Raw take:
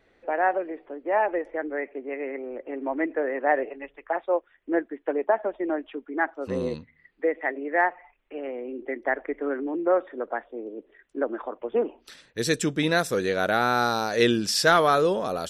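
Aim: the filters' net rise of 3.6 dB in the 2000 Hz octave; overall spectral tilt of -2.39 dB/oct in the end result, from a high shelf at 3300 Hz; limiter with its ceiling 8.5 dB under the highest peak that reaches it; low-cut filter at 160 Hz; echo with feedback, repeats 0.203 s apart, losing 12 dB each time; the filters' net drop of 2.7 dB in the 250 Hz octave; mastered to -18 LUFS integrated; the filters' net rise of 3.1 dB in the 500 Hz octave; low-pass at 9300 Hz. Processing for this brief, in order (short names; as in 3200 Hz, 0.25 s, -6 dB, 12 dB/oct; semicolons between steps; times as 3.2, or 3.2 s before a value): HPF 160 Hz; LPF 9300 Hz; bell 250 Hz -6 dB; bell 500 Hz +5 dB; bell 2000 Hz +6.5 dB; high shelf 3300 Hz -7.5 dB; limiter -12.5 dBFS; feedback echo 0.203 s, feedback 25%, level -12 dB; gain +8 dB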